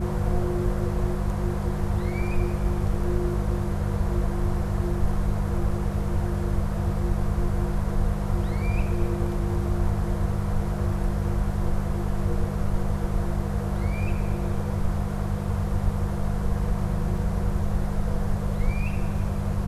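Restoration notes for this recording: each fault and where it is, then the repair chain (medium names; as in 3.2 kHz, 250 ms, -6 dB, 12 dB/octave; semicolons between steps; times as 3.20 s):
hum 50 Hz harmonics 4 -29 dBFS
17.17 s: dropout 2.2 ms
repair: de-hum 50 Hz, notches 4; interpolate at 17.17 s, 2.2 ms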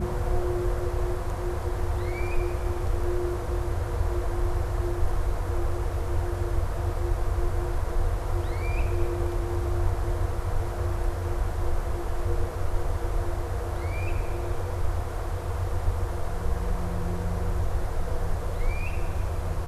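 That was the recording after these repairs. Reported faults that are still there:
nothing left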